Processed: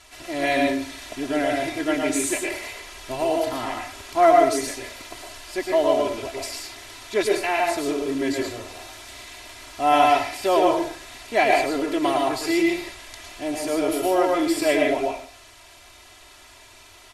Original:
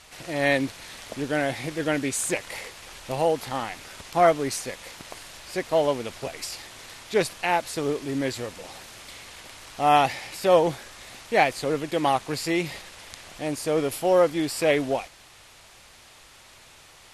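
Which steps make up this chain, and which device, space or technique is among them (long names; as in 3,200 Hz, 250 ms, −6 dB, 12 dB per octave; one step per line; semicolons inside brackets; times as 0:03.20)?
microphone above a desk (comb filter 3 ms, depth 87%; convolution reverb RT60 0.50 s, pre-delay 102 ms, DRR 0 dB)
level −2.5 dB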